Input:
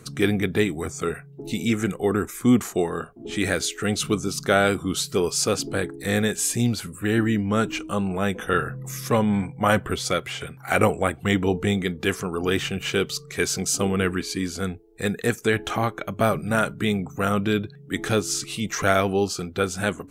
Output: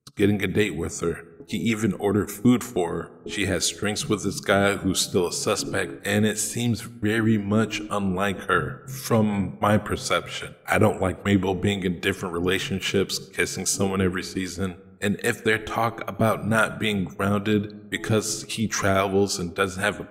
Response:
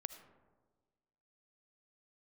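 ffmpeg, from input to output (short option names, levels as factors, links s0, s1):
-filter_complex "[0:a]acrossover=split=500[s0][s1];[s0]aeval=exprs='val(0)*(1-0.7/2+0.7/2*cos(2*PI*3.7*n/s))':c=same[s2];[s1]aeval=exprs='val(0)*(1-0.7/2-0.7/2*cos(2*PI*3.7*n/s))':c=same[s3];[s2][s3]amix=inputs=2:normalize=0,agate=range=0.0224:threshold=0.0141:ratio=16:detection=peak,asplit=2[s4][s5];[1:a]atrim=start_sample=2205[s6];[s5][s6]afir=irnorm=-1:irlink=0,volume=0.75[s7];[s4][s7]amix=inputs=2:normalize=0"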